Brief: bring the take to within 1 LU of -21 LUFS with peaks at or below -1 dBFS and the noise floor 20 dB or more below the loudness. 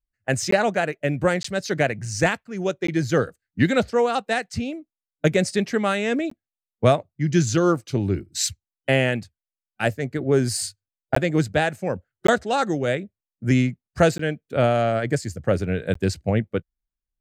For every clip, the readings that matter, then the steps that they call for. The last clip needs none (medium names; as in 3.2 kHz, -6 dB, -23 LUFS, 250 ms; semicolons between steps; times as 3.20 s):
dropouts 8; longest dropout 14 ms; loudness -23.5 LUFS; peak level -4.0 dBFS; loudness target -21.0 LUFS
-> interpolate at 0.51/1.43/2.87/6.30/11.15/12.27/14.18/15.94 s, 14 ms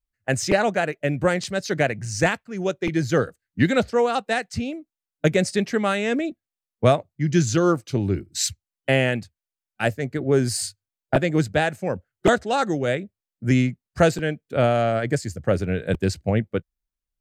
dropouts 0; loudness -23.0 LUFS; peak level -4.0 dBFS; loudness target -21.0 LUFS
-> trim +2 dB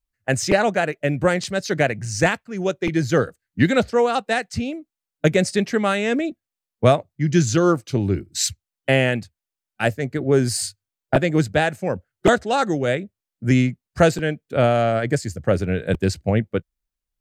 loudness -21.0 LUFS; peak level -2.0 dBFS; noise floor -88 dBFS